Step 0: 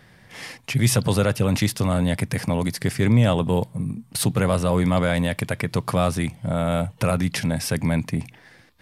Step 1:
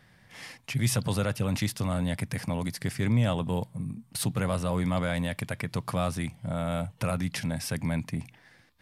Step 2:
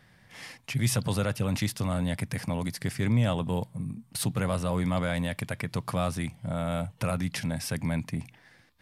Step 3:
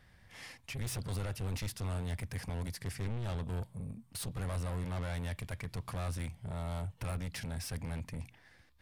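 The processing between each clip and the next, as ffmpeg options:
-af "equalizer=f=410:w=1.7:g=-4,volume=-7dB"
-af anull
-af "asoftclip=type=tanh:threshold=-31dB,lowshelf=f=100:t=q:w=1.5:g=9,volume=-5dB"

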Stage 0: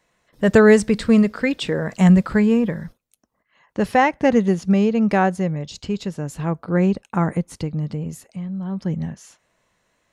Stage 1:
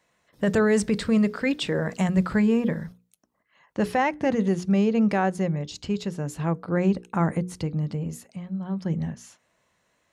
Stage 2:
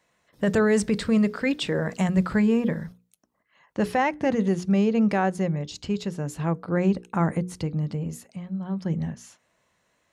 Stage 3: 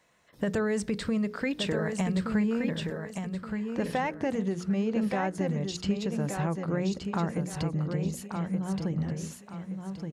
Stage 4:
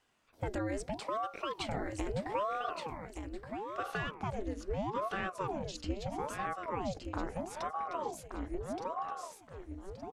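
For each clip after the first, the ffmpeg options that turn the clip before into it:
-af "highpass=47,alimiter=limit=-12dB:level=0:latency=1:release=17,bandreject=f=60:t=h:w=6,bandreject=f=120:t=h:w=6,bandreject=f=180:t=h:w=6,bandreject=f=240:t=h:w=6,bandreject=f=300:t=h:w=6,bandreject=f=360:t=h:w=6,bandreject=f=420:t=h:w=6,bandreject=f=480:t=h:w=6,volume=-2dB"
-af anull
-filter_complex "[0:a]acompressor=threshold=-31dB:ratio=3,asplit=2[a][b];[b]aecho=0:1:1173|2346|3519|4692:0.501|0.165|0.0546|0.018[c];[a][c]amix=inputs=2:normalize=0,volume=2dB"
-af "aeval=exprs='val(0)*sin(2*PI*540*n/s+540*0.8/0.77*sin(2*PI*0.77*n/s))':c=same,volume=-5dB"

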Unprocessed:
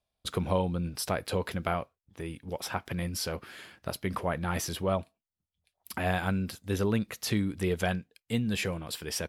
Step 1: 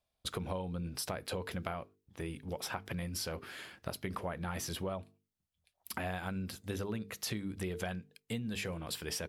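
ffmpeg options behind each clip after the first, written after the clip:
-af "bandreject=f=50:t=h:w=6,bandreject=f=100:t=h:w=6,bandreject=f=150:t=h:w=6,bandreject=f=200:t=h:w=6,bandreject=f=250:t=h:w=6,bandreject=f=300:t=h:w=6,bandreject=f=350:t=h:w=6,bandreject=f=400:t=h:w=6,bandreject=f=450:t=h:w=6,acompressor=threshold=-35dB:ratio=6"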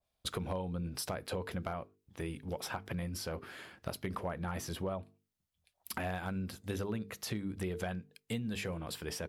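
-af "aeval=exprs='clip(val(0),-1,0.0422)':c=same,adynamicequalizer=threshold=0.00158:dfrequency=1800:dqfactor=0.7:tfrequency=1800:tqfactor=0.7:attack=5:release=100:ratio=0.375:range=3:mode=cutabove:tftype=highshelf,volume=1dB"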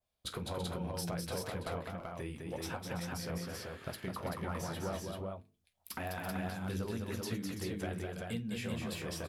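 -af "flanger=delay=7.8:depth=9.6:regen=-47:speed=1.8:shape=sinusoidal,aecho=1:1:48|206|333|385:0.126|0.596|0.282|0.708,volume=1dB"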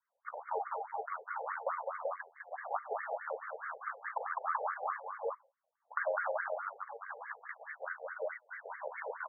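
-af "highpass=f=530:t=q:w=0.5412,highpass=f=530:t=q:w=1.307,lowpass=f=2.2k:t=q:w=0.5176,lowpass=f=2.2k:t=q:w=0.7071,lowpass=f=2.2k:t=q:w=1.932,afreqshift=-110,afftfilt=real='re*between(b*sr/1024,600*pow(1600/600,0.5+0.5*sin(2*PI*4.7*pts/sr))/1.41,600*pow(1600/600,0.5+0.5*sin(2*PI*4.7*pts/sr))*1.41)':imag='im*between(b*sr/1024,600*pow(1600/600,0.5+0.5*sin(2*PI*4.7*pts/sr))/1.41,600*pow(1600/600,0.5+0.5*sin(2*PI*4.7*pts/sr))*1.41)':win_size=1024:overlap=0.75,volume=12dB"

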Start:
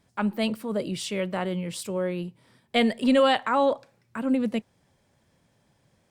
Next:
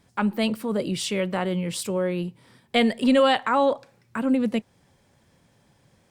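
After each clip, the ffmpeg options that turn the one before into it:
-filter_complex "[0:a]bandreject=f=630:w=16,asplit=2[a][b];[b]acompressor=threshold=-30dB:ratio=6,volume=-2dB[c];[a][c]amix=inputs=2:normalize=0"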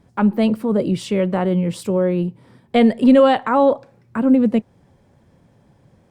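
-af "tiltshelf=f=1.4k:g=7,volume=1.5dB"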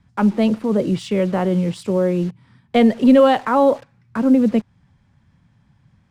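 -filter_complex "[0:a]acrossover=split=240|910[a][b][c];[b]acrusher=bits=6:mix=0:aa=0.000001[d];[a][d][c]amix=inputs=3:normalize=0,adynamicsmooth=sensitivity=5:basefreq=6.9k"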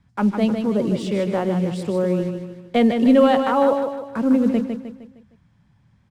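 -af "aecho=1:1:154|308|462|616|770:0.473|0.203|0.0875|0.0376|0.0162,volume=-3dB"

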